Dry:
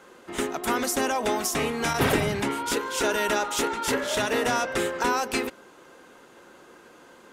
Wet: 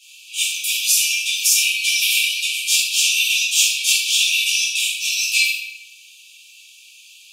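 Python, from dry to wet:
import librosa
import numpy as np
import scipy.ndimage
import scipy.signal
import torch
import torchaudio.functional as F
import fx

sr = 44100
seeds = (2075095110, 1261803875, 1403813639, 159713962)

p1 = fx.rider(x, sr, range_db=4, speed_s=0.5)
p2 = x + (p1 * librosa.db_to_amplitude(-1.0))
p3 = fx.quant_dither(p2, sr, seeds[0], bits=12, dither='none', at=(2.34, 3.05))
p4 = fx.brickwall_highpass(p3, sr, low_hz=2300.0)
y = fx.room_shoebox(p4, sr, seeds[1], volume_m3=540.0, walls='mixed', distance_m=5.4)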